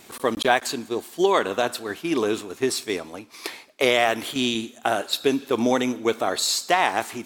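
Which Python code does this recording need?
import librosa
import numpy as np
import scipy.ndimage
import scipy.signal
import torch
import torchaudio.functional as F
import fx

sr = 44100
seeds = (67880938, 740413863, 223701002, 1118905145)

y = fx.fix_interpolate(x, sr, at_s=(0.44,), length_ms=6.9)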